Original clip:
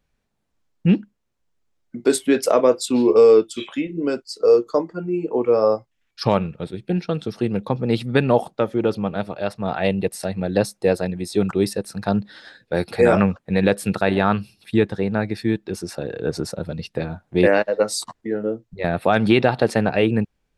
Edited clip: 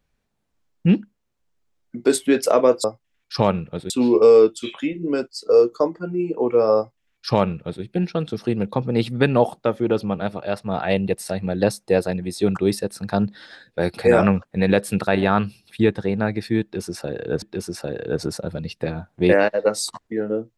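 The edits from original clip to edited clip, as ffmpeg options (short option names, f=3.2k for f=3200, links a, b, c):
-filter_complex "[0:a]asplit=4[a][b][c][d];[a]atrim=end=2.842[e];[b]atrim=start=5.708:end=6.772[f];[c]atrim=start=2.838:end=16.362[g];[d]atrim=start=15.558[h];[e][f]acrossfade=d=0.004:c1=hsin:c2=hsin[i];[i][g]acrossfade=d=0.004:c1=hsin:c2=hsin[j];[j][h]acrossfade=d=0.004:c1=hsin:c2=hsin"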